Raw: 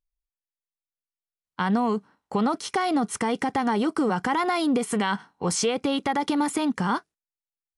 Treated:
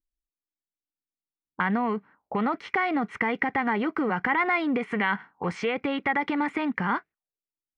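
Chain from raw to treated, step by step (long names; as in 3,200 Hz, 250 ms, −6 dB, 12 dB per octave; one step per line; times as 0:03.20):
envelope-controlled low-pass 300–2,100 Hz up, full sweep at −28.5 dBFS
level −3.5 dB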